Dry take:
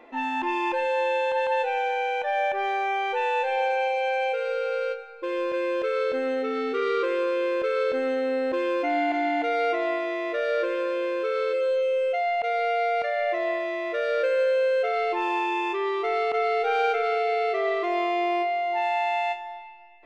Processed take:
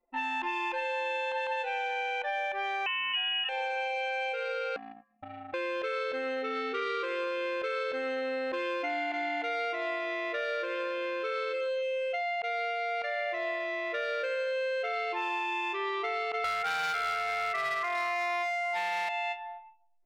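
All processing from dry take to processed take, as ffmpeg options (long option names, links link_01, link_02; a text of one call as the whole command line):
ffmpeg -i in.wav -filter_complex "[0:a]asettb=1/sr,asplit=3[link_01][link_02][link_03];[link_01]atrim=end=2.864[link_04];[link_02]atrim=start=2.86:end=3.49,asetpts=PTS-STARTPTS,afade=type=in:duration=0.004:curve=qsin,afade=type=out:start_time=0.626:duration=0.004:curve=qsin,asplit=2[link_05][link_06];[link_06]adelay=12,volume=-5dB[link_07];[link_05][link_07]amix=inputs=2:normalize=0,atrim=end_sample=27783,lowpass=frequency=2900:width_type=q:width=0.5098,lowpass=frequency=2900:width_type=q:width=0.6013,lowpass=frequency=2900:width_type=q:width=0.9,lowpass=frequency=2900:width_type=q:width=2.563,afreqshift=-3400[link_08];[link_03]atrim=start=3.486[link_09];[link_04][link_08]acrossfade=duration=0.004:curve1=hsin:curve2=qsin[link_10];[link_10][link_09]acrossfade=duration=0.004:curve1=qsin:curve2=hsin,asettb=1/sr,asplit=3[link_11][link_12][link_13];[link_11]atrim=end=4.764[link_14];[link_12]atrim=start=4.76:end=5.54,asetpts=PTS-STARTPTS,afade=type=in:duration=0.004:curve=qsin,afade=type=out:start_time=0.776:duration=0.004:curve=qsin,acompressor=threshold=-30dB:ratio=10:attack=3.2:release=140:knee=1:detection=peak,aeval=exprs='val(0)*sin(2*PI*250*n/s)':channel_layout=same[link_15];[link_13]atrim=start=5.536[link_16];[link_14][link_15]acrossfade=duration=0.004:curve1=hsin:curve2=qsin[link_17];[link_17][link_16]acrossfade=duration=0.004:curve1=qsin:curve2=hsin,asettb=1/sr,asplit=3[link_18][link_19][link_20];[link_18]atrim=end=16.444[link_21];[link_19]atrim=start=16.44:end=19.09,asetpts=PTS-STARTPTS,afade=type=in:duration=0.004:curve=qsin,afade=type=out:start_time=2.646:duration=0.004:curve=qsin,highpass=670,lowpass=2100,equalizer=frequency=1500:width_type=o:width=1.7:gain=13,asoftclip=type=hard:threshold=-18.5dB[link_22];[link_20]atrim=start=19.086[link_23];[link_21][link_22]acrossfade=duration=0.004:curve1=hsin:curve2=qsin[link_24];[link_24][link_23]acrossfade=duration=0.004:curve1=qsin:curve2=hsin,anlmdn=3.98,tiltshelf=frequency=810:gain=-6.5,acompressor=threshold=-26dB:ratio=6,volume=-3dB" out.wav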